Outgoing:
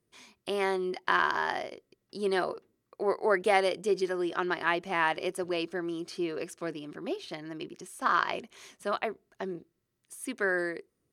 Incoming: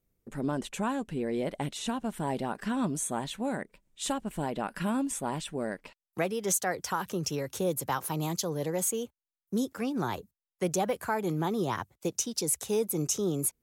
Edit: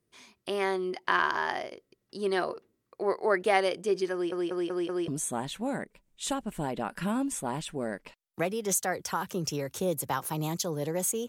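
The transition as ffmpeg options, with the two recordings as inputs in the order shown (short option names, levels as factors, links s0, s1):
-filter_complex "[0:a]apad=whole_dur=11.28,atrim=end=11.28,asplit=5[s0][s1][s2][s3][s4];[s0]atrim=end=4.322[s5];[s1]atrim=start=4.128:end=4.322[s6];[s2]atrim=start=4.128:end=4.322[s7];[s3]atrim=start=4.128:end=4.322[s8];[s4]atrim=start=4.128:end=4.322[s9];[1:a]atrim=start=2.868:end=9.07[s10];[s5][s6]acrossfade=d=0.004:c1=hsin:c2=hsin[s11];[s11][s7]acrossfade=d=0.004:c1=hsin:c2=hsin[s12];[s12][s8]acrossfade=d=0.004:c1=hsin:c2=hsin[s13];[s13][s9]acrossfade=d=0.004:c1=hsin:c2=hsin[s14];[s14][s10]acrossfade=d=0.004:c1=hsin:c2=hsin"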